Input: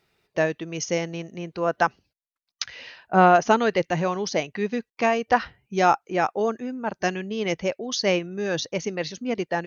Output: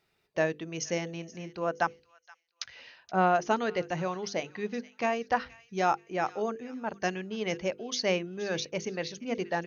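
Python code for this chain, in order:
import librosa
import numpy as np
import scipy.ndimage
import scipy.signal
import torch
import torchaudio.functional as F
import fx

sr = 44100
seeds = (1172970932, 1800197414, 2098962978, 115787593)

y = fx.hum_notches(x, sr, base_hz=50, count=10)
y = fx.echo_wet_highpass(y, sr, ms=474, feedback_pct=30, hz=1700.0, wet_db=-17)
y = fx.rider(y, sr, range_db=3, speed_s=2.0)
y = y * librosa.db_to_amplitude(-7.5)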